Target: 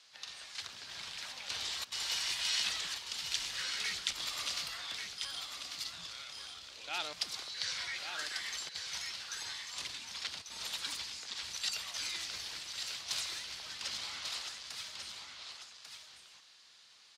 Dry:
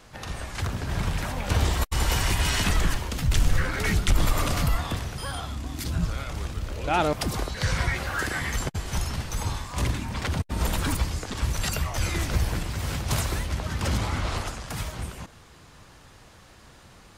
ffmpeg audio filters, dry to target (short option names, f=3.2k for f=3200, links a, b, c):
-af "bandpass=f=4.3k:t=q:w=1.9:csg=0,aecho=1:1:1143:0.473"